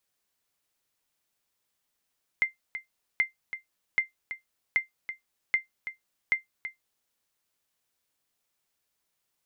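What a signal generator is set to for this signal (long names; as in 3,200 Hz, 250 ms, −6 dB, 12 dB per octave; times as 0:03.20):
ping with an echo 2,090 Hz, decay 0.14 s, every 0.78 s, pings 6, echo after 0.33 s, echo −11.5 dB −15 dBFS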